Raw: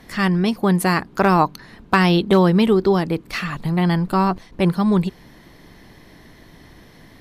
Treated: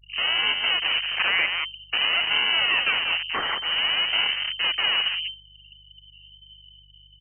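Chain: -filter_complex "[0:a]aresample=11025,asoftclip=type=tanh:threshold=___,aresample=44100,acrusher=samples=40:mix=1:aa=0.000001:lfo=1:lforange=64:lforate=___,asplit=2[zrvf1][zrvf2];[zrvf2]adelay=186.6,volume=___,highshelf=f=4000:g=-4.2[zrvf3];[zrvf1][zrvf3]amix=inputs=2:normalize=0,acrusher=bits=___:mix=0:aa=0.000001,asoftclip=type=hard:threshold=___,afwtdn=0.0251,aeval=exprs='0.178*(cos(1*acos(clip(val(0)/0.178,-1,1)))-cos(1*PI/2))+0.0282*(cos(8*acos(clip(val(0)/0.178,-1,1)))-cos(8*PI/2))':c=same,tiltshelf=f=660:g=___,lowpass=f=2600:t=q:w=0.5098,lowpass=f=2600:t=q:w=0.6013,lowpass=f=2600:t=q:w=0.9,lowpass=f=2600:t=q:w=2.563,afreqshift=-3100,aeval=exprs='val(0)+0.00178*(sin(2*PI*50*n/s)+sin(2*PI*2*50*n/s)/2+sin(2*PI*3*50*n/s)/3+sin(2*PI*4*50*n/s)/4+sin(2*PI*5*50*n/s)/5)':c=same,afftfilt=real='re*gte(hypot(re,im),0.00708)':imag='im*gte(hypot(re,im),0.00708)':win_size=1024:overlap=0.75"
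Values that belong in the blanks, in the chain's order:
0.126, 0.52, 0.501, 11, 0.141, -3.5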